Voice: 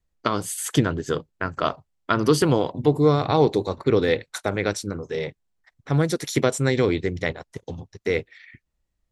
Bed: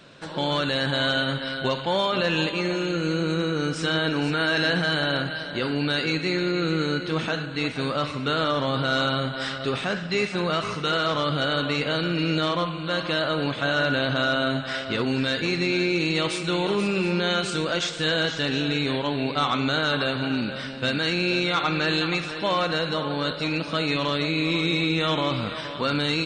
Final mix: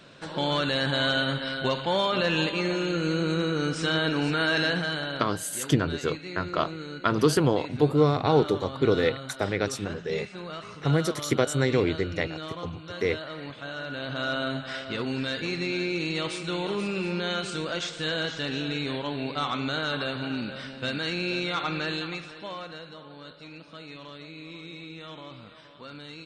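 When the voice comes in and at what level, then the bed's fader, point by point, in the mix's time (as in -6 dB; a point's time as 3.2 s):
4.95 s, -3.0 dB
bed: 4.57 s -1.5 dB
5.47 s -13 dB
13.85 s -13 dB
14.3 s -5.5 dB
21.76 s -5.5 dB
22.97 s -18.5 dB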